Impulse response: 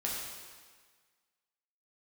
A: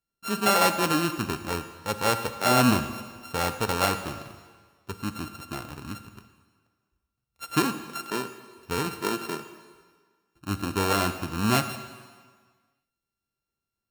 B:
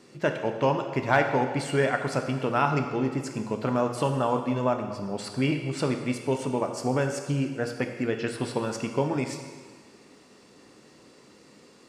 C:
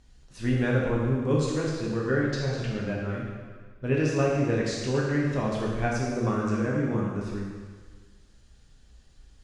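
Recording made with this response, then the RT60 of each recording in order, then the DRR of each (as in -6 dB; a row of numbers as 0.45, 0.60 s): C; 1.6, 1.6, 1.6 s; 9.0, 4.5, -4.5 dB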